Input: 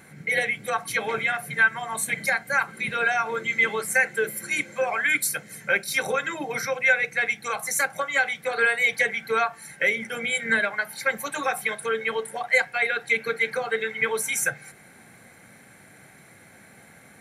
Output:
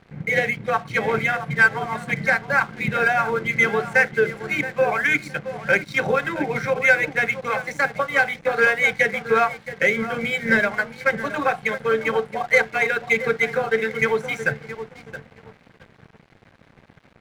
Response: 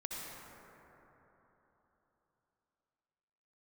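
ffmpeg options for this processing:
-filter_complex "[0:a]aemphasis=mode=reproduction:type=bsi,asplit=2[link_01][link_02];[link_02]adelay=671,lowpass=frequency=1600:poles=1,volume=-10dB,asplit=2[link_03][link_04];[link_04]adelay=671,lowpass=frequency=1600:poles=1,volume=0.32,asplit=2[link_05][link_06];[link_06]adelay=671,lowpass=frequency=1600:poles=1,volume=0.32,asplit=2[link_07][link_08];[link_08]adelay=671,lowpass=frequency=1600:poles=1,volume=0.32[link_09];[link_03][link_05][link_07][link_09]amix=inputs=4:normalize=0[link_10];[link_01][link_10]amix=inputs=2:normalize=0,adynamicsmooth=sensitivity=2:basefreq=3500,aeval=exprs='sgn(val(0))*max(abs(val(0))-0.00473,0)':channel_layout=same,volume=5dB"

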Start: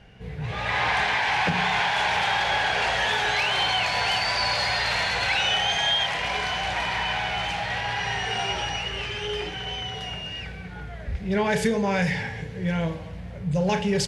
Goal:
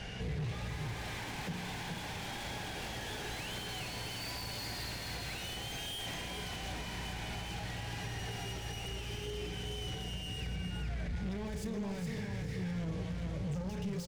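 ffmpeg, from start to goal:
ffmpeg -i in.wav -filter_complex "[0:a]equalizer=frequency=6700:width_type=o:width=2.1:gain=10,asoftclip=type=tanh:threshold=-18.5dB,acompressor=threshold=-28dB:ratio=6,volume=33dB,asoftclip=hard,volume=-33dB,asplit=2[link_01][link_02];[link_02]aecho=0:1:418:0.562[link_03];[link_01][link_03]amix=inputs=2:normalize=0,acrossover=split=390[link_04][link_05];[link_05]acompressor=threshold=-46dB:ratio=10[link_06];[link_04][link_06]amix=inputs=2:normalize=0,alimiter=level_in=13dB:limit=-24dB:level=0:latency=1:release=283,volume=-13dB,volume=6.5dB" out.wav

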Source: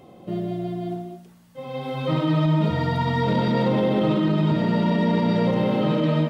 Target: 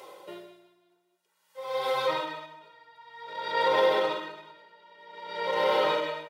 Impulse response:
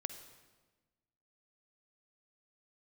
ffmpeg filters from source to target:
-filter_complex "[0:a]highpass=810,aecho=1:1:2.1:0.81,asplit=2[link_01][link_02];[link_02]acompressor=threshold=-33dB:ratio=6,volume=0.5dB[link_03];[link_01][link_03]amix=inputs=2:normalize=0,aeval=exprs='val(0)*pow(10,-33*(0.5-0.5*cos(2*PI*0.52*n/s))/20)':channel_layout=same,volume=2dB"

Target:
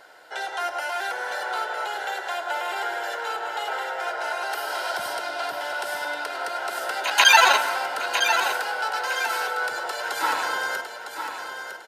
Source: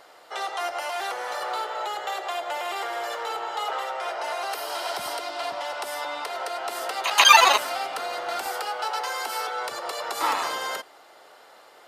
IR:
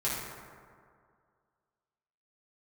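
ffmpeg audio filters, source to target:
-filter_complex "[0:a]asuperstop=centerf=1200:order=8:qfactor=7.2,equalizer=frequency=1500:width_type=o:width=0.27:gain=10.5,aecho=1:1:956|1912|2868|3824:0.398|0.127|0.0408|0.013,asplit=2[link_01][link_02];[1:a]atrim=start_sample=2205,adelay=105[link_03];[link_02][link_03]afir=irnorm=-1:irlink=0,volume=-19dB[link_04];[link_01][link_04]amix=inputs=2:normalize=0,volume=-1dB"

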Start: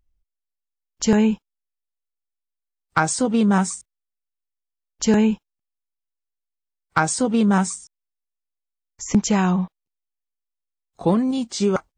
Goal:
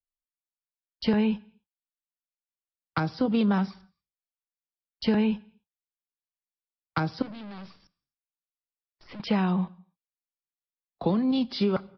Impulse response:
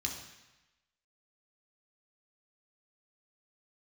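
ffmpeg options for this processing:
-filter_complex "[0:a]agate=range=-33dB:threshold=-42dB:ratio=16:detection=peak,acrossover=split=94|200|410|4100[link_01][link_02][link_03][link_04][link_05];[link_01]acompressor=threshold=-53dB:ratio=4[link_06];[link_02]acompressor=threshold=-31dB:ratio=4[link_07];[link_03]acompressor=threshold=-30dB:ratio=4[link_08];[link_04]acompressor=threshold=-30dB:ratio=4[link_09];[link_05]acompressor=threshold=-38dB:ratio=4[link_10];[link_06][link_07][link_08][link_09][link_10]amix=inputs=5:normalize=0,asettb=1/sr,asplit=3[link_11][link_12][link_13];[link_11]atrim=end=7.224[link_14];[link_12]atrim=start=7.22:end=9.2,asetpts=PTS-STARTPTS,afade=type=in:duration=0.004:curve=qsin,afade=type=out:start_time=1.976:duration=0.004:curve=qsin,aeval=exprs='(tanh(112*val(0)+0.35)-tanh(0.35))/112':channel_layout=same[link_15];[link_13]atrim=start=9.196[link_16];[link_14][link_15]acrossfade=duration=0.004:curve1=hsin:curve2=qsin[link_17];[link_17][link_16]acrossfade=duration=0.004:curve1=qsin:curve2=hsin,asplit=2[link_18][link_19];[1:a]atrim=start_sample=2205,afade=type=out:start_time=0.33:duration=0.01,atrim=end_sample=14994[link_20];[link_19][link_20]afir=irnorm=-1:irlink=0,volume=-19dB[link_21];[link_18][link_21]amix=inputs=2:normalize=0,aresample=11025,aresample=44100"

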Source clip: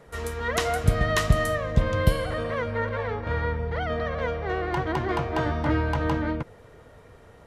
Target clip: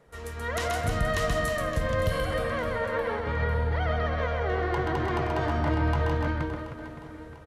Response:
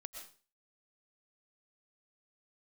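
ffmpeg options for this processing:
-filter_complex "[0:a]alimiter=limit=-18dB:level=0:latency=1:release=47,dynaudnorm=framelen=290:gausssize=3:maxgain=6.5dB,asplit=2[link_01][link_02];[link_02]aecho=0:1:130|312|566.8|923.5|1423:0.631|0.398|0.251|0.158|0.1[link_03];[link_01][link_03]amix=inputs=2:normalize=0,volume=-8dB"

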